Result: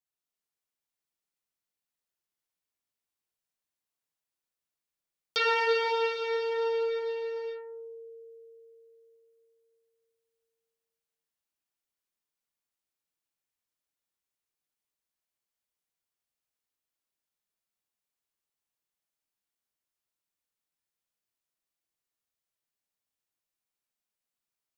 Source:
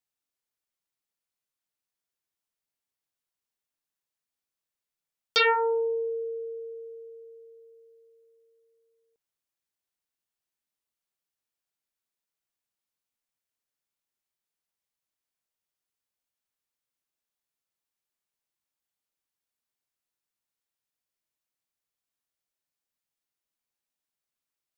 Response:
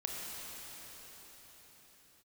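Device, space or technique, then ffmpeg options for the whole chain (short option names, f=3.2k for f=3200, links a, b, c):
cathedral: -filter_complex "[1:a]atrim=start_sample=2205[a];[0:a][a]afir=irnorm=-1:irlink=0,volume=-4dB"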